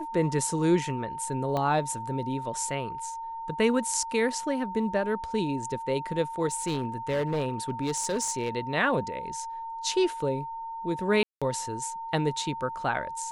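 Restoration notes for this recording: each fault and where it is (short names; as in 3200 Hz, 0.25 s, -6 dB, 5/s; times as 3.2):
tone 910 Hz -34 dBFS
1.57 pop -17 dBFS
6.52–8.5 clipped -23.5 dBFS
11.23–11.42 gap 0.186 s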